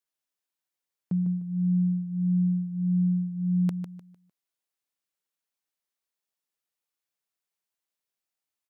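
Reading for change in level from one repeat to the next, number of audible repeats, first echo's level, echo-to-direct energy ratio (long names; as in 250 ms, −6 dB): −10.5 dB, 3, −8.5 dB, −8.0 dB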